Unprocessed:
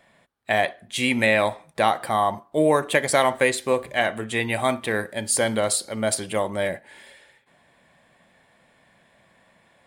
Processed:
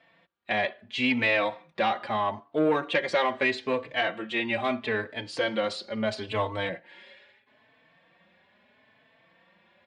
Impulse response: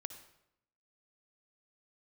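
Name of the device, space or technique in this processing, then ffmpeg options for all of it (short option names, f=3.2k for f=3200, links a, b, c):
barber-pole flanger into a guitar amplifier: -filter_complex "[0:a]asettb=1/sr,asplit=3[a][b][c];[a]atrim=end=6.274[d];[b]atrim=start=6.27:end=6.69,asetpts=PTS-STARTPTS,afade=t=in:d=0.004:c=qsin,afade=t=out:st=0.416:d=0.004:c=qsin,equalizer=f=100:t=o:w=0.33:g=11,equalizer=f=1k:t=o:w=0.33:g=7,equalizer=f=4k:t=o:w=0.33:g=8,equalizer=f=8k:t=o:w=0.33:g=6[e];[c]atrim=start=6.686[f];[d][e]acrossfade=d=0.004:c1=hsin:c2=qsin[g];[g][f]acrossfade=d=0.004:c1=qsin:c2=hsin,asplit=2[h][i];[i]adelay=4,afreqshift=0.76[j];[h][j]amix=inputs=2:normalize=1,asoftclip=type=tanh:threshold=-15.5dB,highpass=100,equalizer=f=140:t=q:w=4:g=-7,equalizer=f=750:t=q:w=4:g=-3,equalizer=f=2.7k:t=q:w=4:g=4,lowpass=f=4.6k:w=0.5412,lowpass=f=4.6k:w=1.3066"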